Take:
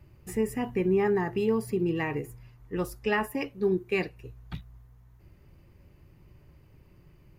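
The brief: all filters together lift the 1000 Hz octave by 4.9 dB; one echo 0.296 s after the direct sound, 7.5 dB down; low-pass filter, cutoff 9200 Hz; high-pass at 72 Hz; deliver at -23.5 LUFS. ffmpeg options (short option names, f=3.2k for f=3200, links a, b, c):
-af "highpass=72,lowpass=9.2k,equalizer=f=1k:t=o:g=6,aecho=1:1:296:0.422,volume=4.5dB"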